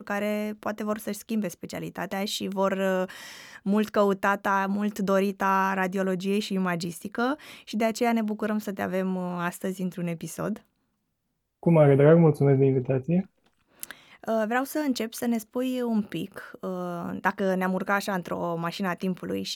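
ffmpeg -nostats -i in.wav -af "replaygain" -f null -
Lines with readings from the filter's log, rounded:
track_gain = +6.8 dB
track_peak = 0.295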